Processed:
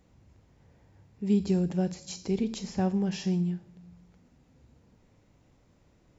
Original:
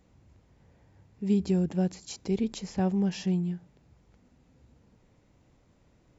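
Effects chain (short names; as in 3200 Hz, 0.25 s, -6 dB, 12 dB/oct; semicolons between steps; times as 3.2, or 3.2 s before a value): on a send: bell 5800 Hz +14 dB 1.5 oct + reverb RT60 0.80 s, pre-delay 19 ms, DRR 14 dB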